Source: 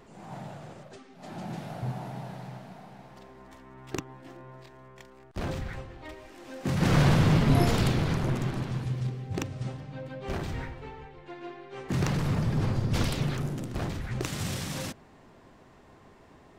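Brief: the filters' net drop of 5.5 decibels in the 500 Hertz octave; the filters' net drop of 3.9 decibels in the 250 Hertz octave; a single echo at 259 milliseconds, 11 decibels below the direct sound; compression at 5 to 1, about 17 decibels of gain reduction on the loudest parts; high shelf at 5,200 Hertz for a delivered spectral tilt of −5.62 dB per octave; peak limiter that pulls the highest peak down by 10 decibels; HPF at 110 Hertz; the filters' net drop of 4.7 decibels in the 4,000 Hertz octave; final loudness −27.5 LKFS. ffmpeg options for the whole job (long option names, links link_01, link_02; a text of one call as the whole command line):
ffmpeg -i in.wav -af "highpass=110,equalizer=frequency=250:width_type=o:gain=-4,equalizer=frequency=500:width_type=o:gain=-6,equalizer=frequency=4000:width_type=o:gain=-7.5,highshelf=frequency=5200:gain=3,acompressor=threshold=-41dB:ratio=5,alimiter=level_in=12dB:limit=-24dB:level=0:latency=1,volume=-12dB,aecho=1:1:259:0.282,volume=19dB" out.wav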